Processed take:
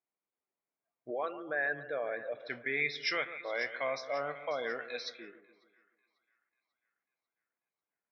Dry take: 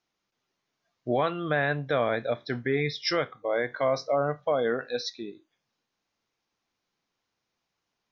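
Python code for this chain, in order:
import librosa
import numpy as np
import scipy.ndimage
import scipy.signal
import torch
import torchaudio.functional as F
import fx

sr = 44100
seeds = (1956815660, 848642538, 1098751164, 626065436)

y = fx.envelope_sharpen(x, sr, power=2.0, at=(1.1, 2.4))
y = fx.highpass(y, sr, hz=590.0, slope=6)
y = fx.peak_eq(y, sr, hz=2300.0, db=11.5, octaves=0.66)
y = fx.echo_split(y, sr, split_hz=1700.0, low_ms=143, high_ms=543, feedback_pct=52, wet_db=-13)
y = fx.env_lowpass(y, sr, base_hz=780.0, full_db=-25.0)
y = y * 10.0 ** (-7.5 / 20.0)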